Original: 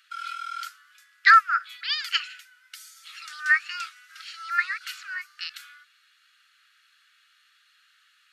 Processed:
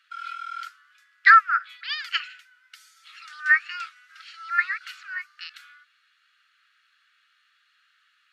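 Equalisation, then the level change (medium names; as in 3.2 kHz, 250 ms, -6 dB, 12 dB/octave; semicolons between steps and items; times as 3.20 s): low-pass 2.5 kHz 6 dB/octave; dynamic bell 1.9 kHz, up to +4 dB, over -36 dBFS, Q 1.3; 0.0 dB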